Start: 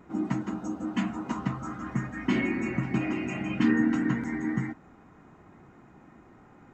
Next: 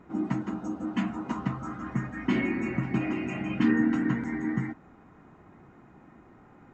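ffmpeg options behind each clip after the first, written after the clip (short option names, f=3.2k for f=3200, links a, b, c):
-af "highshelf=f=5.9k:g=-9"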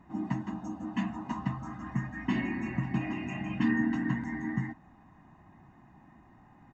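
-af "aecho=1:1:1.1:0.72,volume=-5dB"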